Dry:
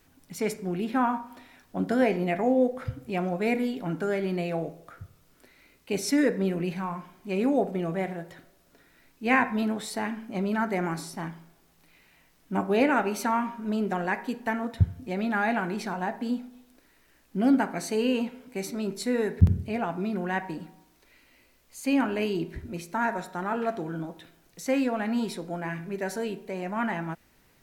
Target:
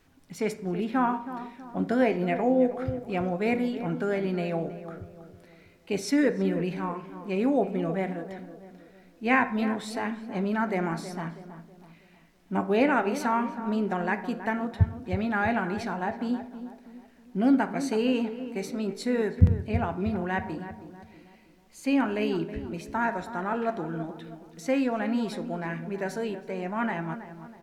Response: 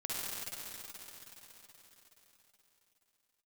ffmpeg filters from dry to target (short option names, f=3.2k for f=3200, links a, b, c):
-filter_complex "[0:a]highshelf=f=8.2k:g=-11,asplit=2[a][b];[b]adelay=322,lowpass=f=1.4k:p=1,volume=-11dB,asplit=2[c][d];[d]adelay=322,lowpass=f=1.4k:p=1,volume=0.44,asplit=2[e][f];[f]adelay=322,lowpass=f=1.4k:p=1,volume=0.44,asplit=2[g][h];[h]adelay=322,lowpass=f=1.4k:p=1,volume=0.44,asplit=2[i][j];[j]adelay=322,lowpass=f=1.4k:p=1,volume=0.44[k];[a][c][e][g][i][k]amix=inputs=6:normalize=0"